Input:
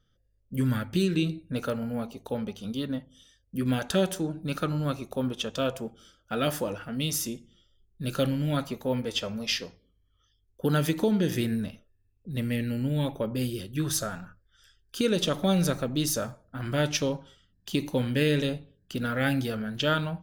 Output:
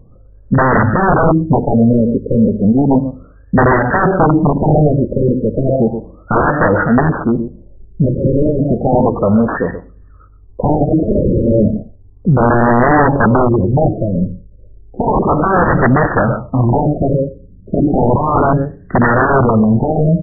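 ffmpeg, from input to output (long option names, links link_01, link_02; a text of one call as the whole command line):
ffmpeg -i in.wav -af "aecho=1:1:123:0.158,aeval=exprs='(mod(16.8*val(0)+1,2)-1)/16.8':channel_layout=same,alimiter=level_in=30.5dB:limit=-1dB:release=50:level=0:latency=1,afftfilt=real='re*lt(b*sr/1024,590*pow(2000/590,0.5+0.5*sin(2*PI*0.33*pts/sr)))':imag='im*lt(b*sr/1024,590*pow(2000/590,0.5+0.5*sin(2*PI*0.33*pts/sr)))':win_size=1024:overlap=0.75,volume=-2.5dB" out.wav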